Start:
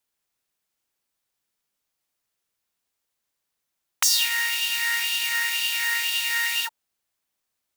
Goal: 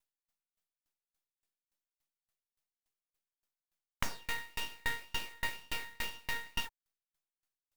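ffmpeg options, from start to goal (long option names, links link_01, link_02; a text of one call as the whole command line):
ffmpeg -i in.wav -filter_complex "[0:a]aeval=exprs='max(val(0),0)':channel_layout=same,acrossover=split=3000[link_01][link_02];[link_02]acompressor=threshold=-36dB:ratio=4:attack=1:release=60[link_03];[link_01][link_03]amix=inputs=2:normalize=0,aeval=exprs='val(0)*pow(10,-35*if(lt(mod(3.5*n/s,1),2*abs(3.5)/1000),1-mod(3.5*n/s,1)/(2*abs(3.5)/1000),(mod(3.5*n/s,1)-2*abs(3.5)/1000)/(1-2*abs(3.5)/1000))/20)':channel_layout=same" out.wav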